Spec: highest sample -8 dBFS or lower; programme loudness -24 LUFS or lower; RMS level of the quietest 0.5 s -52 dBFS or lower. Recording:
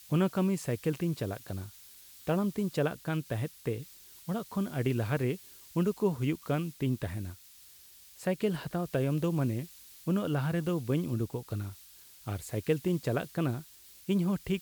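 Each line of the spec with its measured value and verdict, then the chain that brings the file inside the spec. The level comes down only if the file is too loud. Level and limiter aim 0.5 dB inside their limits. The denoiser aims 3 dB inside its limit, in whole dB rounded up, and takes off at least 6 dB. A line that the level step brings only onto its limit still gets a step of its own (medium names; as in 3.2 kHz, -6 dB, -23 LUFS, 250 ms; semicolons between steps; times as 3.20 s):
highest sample -16.0 dBFS: pass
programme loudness -32.5 LUFS: pass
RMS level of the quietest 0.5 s -55 dBFS: pass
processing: none needed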